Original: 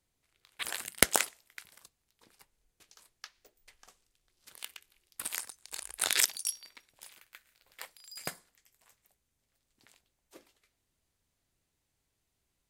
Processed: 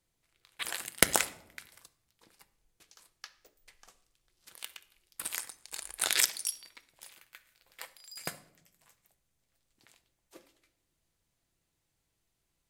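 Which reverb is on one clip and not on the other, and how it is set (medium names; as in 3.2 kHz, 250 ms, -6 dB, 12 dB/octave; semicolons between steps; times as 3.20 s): simulated room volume 2200 m³, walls furnished, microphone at 0.74 m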